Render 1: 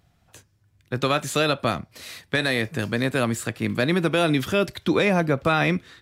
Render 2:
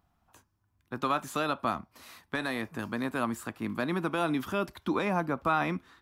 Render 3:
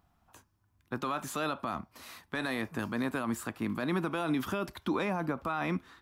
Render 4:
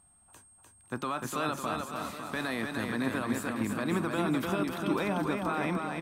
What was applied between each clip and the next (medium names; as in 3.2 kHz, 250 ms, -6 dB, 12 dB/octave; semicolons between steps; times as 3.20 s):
graphic EQ 125/250/500/1000/2000/4000/8000 Hz -10/+3/-8/+9/-6/-6/-6 dB; trim -6 dB
peak limiter -24.5 dBFS, peak gain reduction 10 dB; trim +2 dB
whistle 8.5 kHz -61 dBFS; bouncing-ball echo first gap 300 ms, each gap 0.85×, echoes 5